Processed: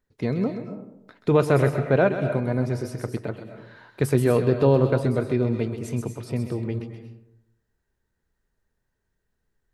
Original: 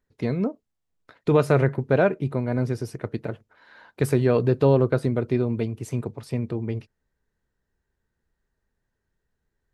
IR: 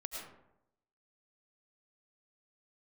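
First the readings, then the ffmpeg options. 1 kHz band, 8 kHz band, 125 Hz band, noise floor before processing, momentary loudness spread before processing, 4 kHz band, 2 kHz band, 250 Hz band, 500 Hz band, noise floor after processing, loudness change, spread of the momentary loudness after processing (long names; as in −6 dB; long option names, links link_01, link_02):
+0.5 dB, +2.5 dB, +0.5 dB, −80 dBFS, 13 LU, +1.0 dB, +1.0 dB, +0.5 dB, +0.5 dB, −78 dBFS, +0.5 dB, 16 LU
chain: -filter_complex "[0:a]asplit=2[link_01][link_02];[1:a]atrim=start_sample=2205,highshelf=frequency=4100:gain=9.5,adelay=130[link_03];[link_02][link_03]afir=irnorm=-1:irlink=0,volume=-7.5dB[link_04];[link_01][link_04]amix=inputs=2:normalize=0"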